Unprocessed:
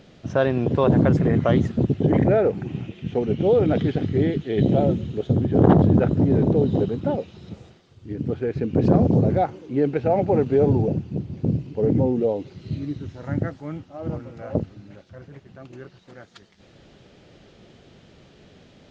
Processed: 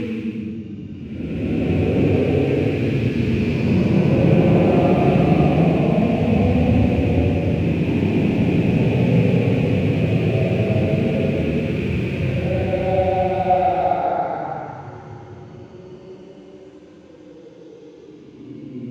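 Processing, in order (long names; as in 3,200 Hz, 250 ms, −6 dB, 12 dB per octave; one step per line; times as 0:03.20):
loose part that buzzes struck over −23 dBFS, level −21 dBFS
extreme stretch with random phases 18×, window 0.10 s, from 0:08.66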